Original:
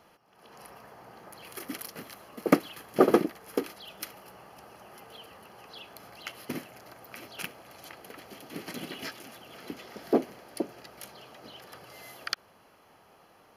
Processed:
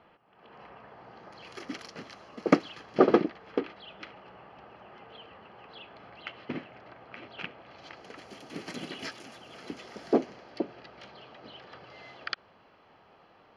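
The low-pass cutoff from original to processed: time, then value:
low-pass 24 dB/octave
0.78 s 3.3 kHz
1.48 s 6.1 kHz
2.69 s 6.1 kHz
3.67 s 3.4 kHz
7.58 s 3.4 kHz
8.25 s 8.4 kHz
10.01 s 8.4 kHz
10.66 s 4.2 kHz

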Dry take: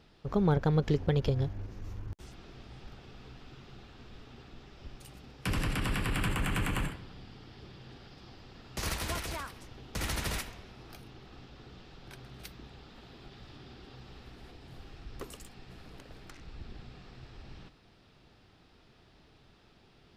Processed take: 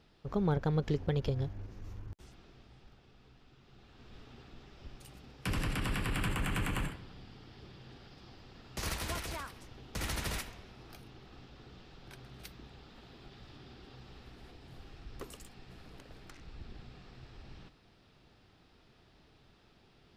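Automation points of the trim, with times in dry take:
1.96 s -4 dB
3.01 s -11 dB
3.59 s -11 dB
4.17 s -2.5 dB

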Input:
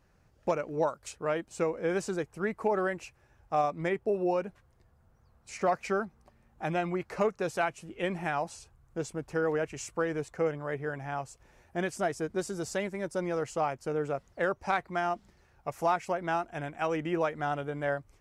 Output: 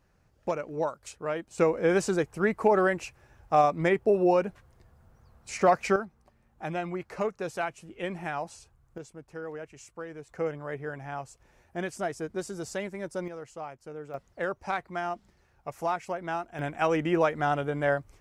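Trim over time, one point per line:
-1 dB
from 1.58 s +6 dB
from 5.96 s -2 dB
from 8.98 s -9.5 dB
from 10.29 s -1.5 dB
from 13.28 s -9.5 dB
from 14.14 s -2 dB
from 16.59 s +5 dB

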